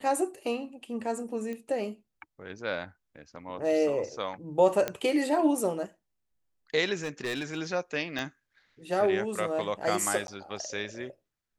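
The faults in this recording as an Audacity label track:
1.530000	1.530000	pop -25 dBFS
4.880000	4.880000	pop -14 dBFS
7.030000	7.590000	clipped -28 dBFS
8.190000	8.190000	pop -20 dBFS
10.270000	10.280000	dropout

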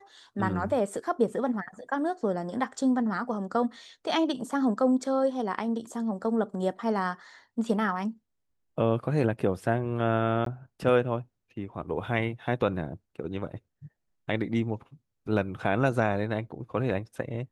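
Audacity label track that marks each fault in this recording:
10.450000	10.460000	dropout 13 ms

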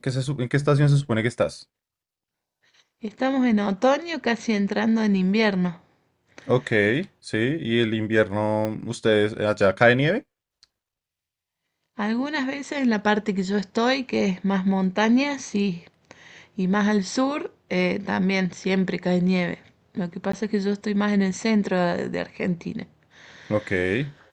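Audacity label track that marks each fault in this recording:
8.650000	8.650000	pop -14 dBFS
20.320000	20.330000	dropout 14 ms

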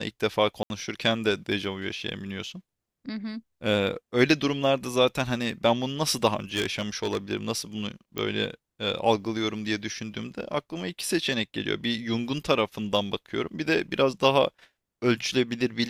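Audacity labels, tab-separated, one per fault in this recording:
0.630000	0.700000	dropout 71 ms
6.540000	7.170000	clipped -22 dBFS
8.180000	8.180000	pop -15 dBFS

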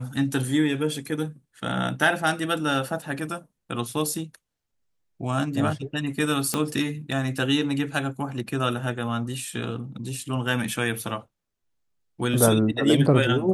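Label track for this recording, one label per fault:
6.540000	6.540000	pop -9 dBFS

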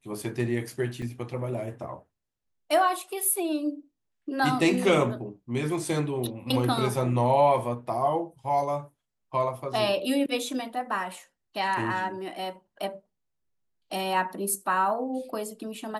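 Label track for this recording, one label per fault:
1.020000	1.020000	dropout 3.3 ms

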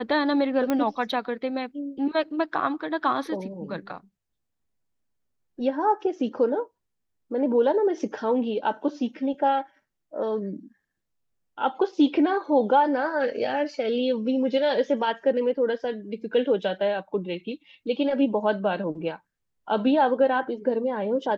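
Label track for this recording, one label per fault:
0.700000	0.700000	pop -12 dBFS

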